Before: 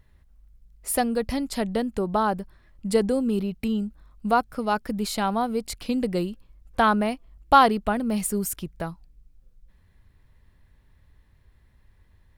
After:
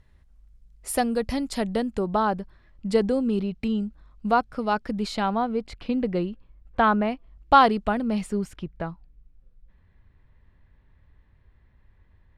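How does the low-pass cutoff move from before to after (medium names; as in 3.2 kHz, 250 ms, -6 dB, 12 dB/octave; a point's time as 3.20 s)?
1.77 s 9.6 kHz
2.26 s 5.4 kHz
5.04 s 5.4 kHz
5.55 s 2.8 kHz
7.04 s 2.8 kHz
7.79 s 6.9 kHz
8.57 s 2.8 kHz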